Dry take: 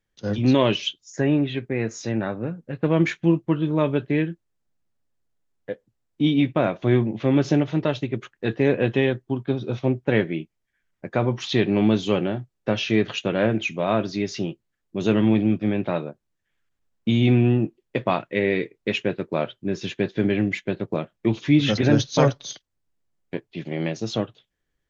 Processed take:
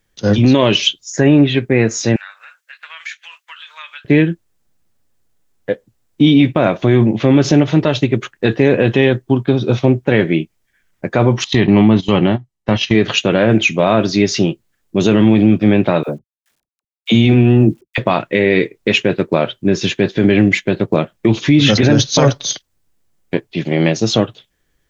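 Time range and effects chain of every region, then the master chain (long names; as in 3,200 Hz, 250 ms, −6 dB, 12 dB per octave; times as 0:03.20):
0:02.16–0:04.05: inverse Chebyshev high-pass filter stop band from 330 Hz, stop band 70 dB + downward compressor 2 to 1, threshold −48 dBFS
0:11.44–0:12.95: noise gate −27 dBFS, range −16 dB + treble cut that deepens with the level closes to 2,500 Hz, closed at −13.5 dBFS + comb filter 1 ms, depth 38%
0:16.03–0:17.98: high-pass filter 42 Hz 6 dB per octave + bit-depth reduction 12 bits, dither none + all-pass dispersion lows, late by 56 ms, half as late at 500 Hz
whole clip: high-shelf EQ 6,200 Hz +6 dB; boost into a limiter +13.5 dB; level −1 dB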